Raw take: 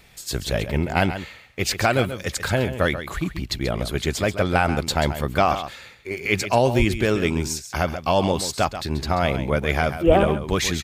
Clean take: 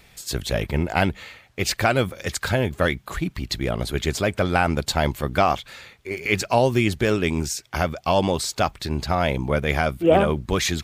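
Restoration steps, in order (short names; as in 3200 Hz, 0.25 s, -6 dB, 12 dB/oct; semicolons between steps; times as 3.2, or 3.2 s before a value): 6.78–6.9 HPF 140 Hz 24 dB/oct; 10.06–10.18 HPF 140 Hz 24 dB/oct; inverse comb 0.135 s -11 dB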